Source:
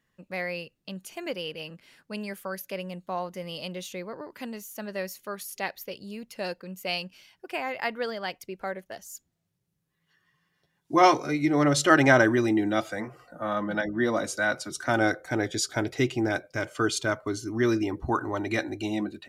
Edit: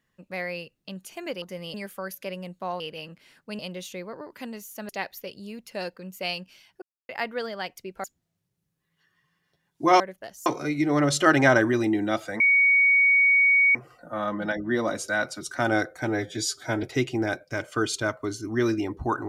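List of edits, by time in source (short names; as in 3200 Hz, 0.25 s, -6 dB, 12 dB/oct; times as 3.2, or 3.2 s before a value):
1.42–2.21 swap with 3.27–3.59
4.89–5.53 cut
7.46–7.73 mute
8.68–9.14 move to 11.1
13.04 add tone 2240 Hz -15.5 dBFS 1.35 s
15.34–15.86 stretch 1.5×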